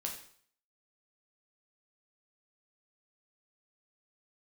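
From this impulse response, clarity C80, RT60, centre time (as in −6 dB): 10.5 dB, 0.55 s, 25 ms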